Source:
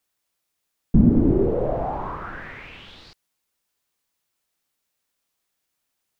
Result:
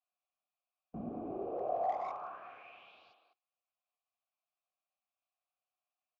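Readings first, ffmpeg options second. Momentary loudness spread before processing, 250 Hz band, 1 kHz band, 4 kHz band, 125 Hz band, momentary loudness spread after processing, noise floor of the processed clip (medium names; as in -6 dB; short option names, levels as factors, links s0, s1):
21 LU, -25.5 dB, -6.0 dB, -18.0 dB, -31.5 dB, 19 LU, under -85 dBFS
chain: -filter_complex "[0:a]asplit=3[s0][s1][s2];[s0]bandpass=f=730:t=q:w=8,volume=1[s3];[s1]bandpass=f=1090:t=q:w=8,volume=0.501[s4];[s2]bandpass=f=2440:t=q:w=8,volume=0.355[s5];[s3][s4][s5]amix=inputs=3:normalize=0,asplit=2[s6][s7];[s7]adelay=200,highpass=300,lowpass=3400,asoftclip=type=hard:threshold=0.0316,volume=0.501[s8];[s6][s8]amix=inputs=2:normalize=0,volume=0.75" -ar 16000 -c:a libvorbis -b:a 64k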